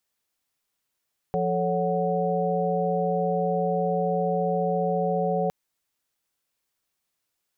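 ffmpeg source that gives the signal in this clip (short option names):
-f lavfi -i "aevalsrc='0.0422*(sin(2*PI*174.61*t)+sin(2*PI*440*t)+sin(2*PI*554.37*t)+sin(2*PI*739.99*t))':d=4.16:s=44100"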